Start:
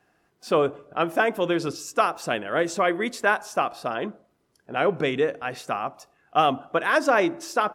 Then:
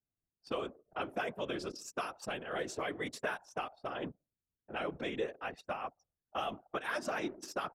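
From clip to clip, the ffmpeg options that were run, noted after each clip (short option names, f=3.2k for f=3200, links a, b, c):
-filter_complex "[0:a]anlmdn=2.51,acrossover=split=140|2700[a][b][c];[a]acompressor=threshold=-56dB:ratio=4[d];[b]acompressor=threshold=-29dB:ratio=4[e];[c]acompressor=threshold=-37dB:ratio=4[f];[d][e][f]amix=inputs=3:normalize=0,afftfilt=real='hypot(re,im)*cos(2*PI*random(0))':imag='hypot(re,im)*sin(2*PI*random(1))':win_size=512:overlap=0.75,volume=-1dB"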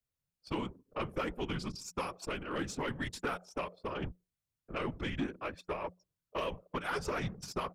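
-af "aeval=exprs='(tanh(25.1*val(0)+0.35)-tanh(0.35))/25.1':c=same,afreqshift=-180,volume=3dB"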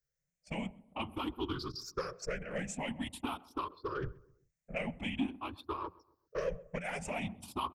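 -filter_complex "[0:a]afftfilt=real='re*pow(10,19/40*sin(2*PI*(0.56*log(max(b,1)*sr/1024/100)/log(2)-(0.47)*(pts-256)/sr)))':imag='im*pow(10,19/40*sin(2*PI*(0.56*log(max(b,1)*sr/1024/100)/log(2)-(0.47)*(pts-256)/sr)))':win_size=1024:overlap=0.75,asplit=2[a][b];[b]adelay=130,lowpass=f=1.2k:p=1,volume=-20.5dB,asplit=2[c][d];[d]adelay=130,lowpass=f=1.2k:p=1,volume=0.42,asplit=2[e][f];[f]adelay=130,lowpass=f=1.2k:p=1,volume=0.42[g];[a][c][e][g]amix=inputs=4:normalize=0,volume=-4.5dB"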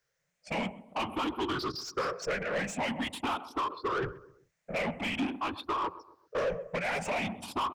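-filter_complex "[0:a]asplit=2[a][b];[b]highpass=f=720:p=1,volume=24dB,asoftclip=type=tanh:threshold=-22.5dB[c];[a][c]amix=inputs=2:normalize=0,lowpass=f=2k:p=1,volume=-6dB"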